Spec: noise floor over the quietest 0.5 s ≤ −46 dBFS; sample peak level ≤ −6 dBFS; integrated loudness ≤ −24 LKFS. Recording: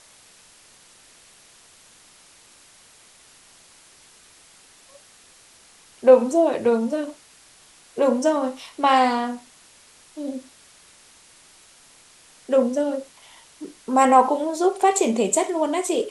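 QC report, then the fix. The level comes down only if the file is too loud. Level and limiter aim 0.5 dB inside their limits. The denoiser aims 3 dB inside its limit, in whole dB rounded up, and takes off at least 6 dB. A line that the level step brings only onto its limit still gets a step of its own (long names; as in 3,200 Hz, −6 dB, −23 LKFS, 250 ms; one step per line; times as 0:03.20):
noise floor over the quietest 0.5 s −52 dBFS: in spec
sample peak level −3.0 dBFS: out of spec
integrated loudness −20.5 LKFS: out of spec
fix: level −4 dB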